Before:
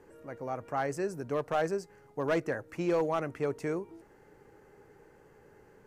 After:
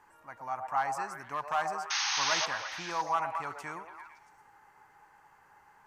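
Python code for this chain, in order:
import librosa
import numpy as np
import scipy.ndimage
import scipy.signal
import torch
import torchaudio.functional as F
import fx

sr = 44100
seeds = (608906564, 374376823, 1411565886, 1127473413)

y = fx.low_shelf_res(x, sr, hz=660.0, db=-11.5, q=3.0)
y = fx.spec_paint(y, sr, seeds[0], shape='noise', start_s=1.9, length_s=0.56, low_hz=750.0, high_hz=6600.0, level_db=-31.0)
y = fx.echo_stepped(y, sr, ms=113, hz=630.0, octaves=0.7, feedback_pct=70, wet_db=-3)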